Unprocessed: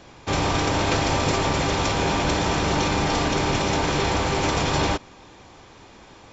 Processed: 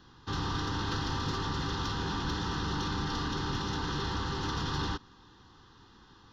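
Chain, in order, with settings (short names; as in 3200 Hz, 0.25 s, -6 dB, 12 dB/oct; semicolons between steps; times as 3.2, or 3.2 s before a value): soft clip -14 dBFS, distortion -21 dB; fixed phaser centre 2300 Hz, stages 6; gain -7 dB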